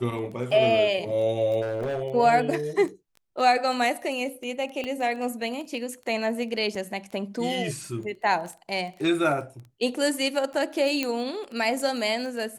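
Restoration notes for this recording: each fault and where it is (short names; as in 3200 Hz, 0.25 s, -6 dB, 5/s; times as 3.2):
crackle 12/s -33 dBFS
1.61–2.02 clipped -25 dBFS
4.84 pop -19 dBFS
6.75 gap 3.9 ms
11.03 pop -11 dBFS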